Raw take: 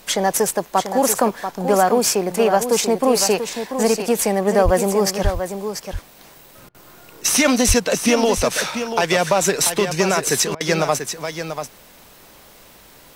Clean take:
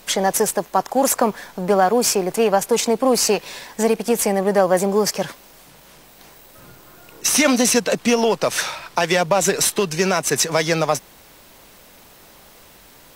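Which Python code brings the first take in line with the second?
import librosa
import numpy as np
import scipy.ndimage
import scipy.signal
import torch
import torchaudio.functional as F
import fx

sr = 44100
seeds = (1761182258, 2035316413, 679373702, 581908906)

y = fx.highpass(x, sr, hz=140.0, slope=24, at=(4.64, 4.76), fade=0.02)
y = fx.highpass(y, sr, hz=140.0, slope=24, at=(5.23, 5.35), fade=0.02)
y = fx.highpass(y, sr, hz=140.0, slope=24, at=(7.67, 7.79), fade=0.02)
y = fx.fix_interpolate(y, sr, at_s=(6.69, 10.55), length_ms=54.0)
y = fx.fix_echo_inverse(y, sr, delay_ms=688, level_db=-8.5)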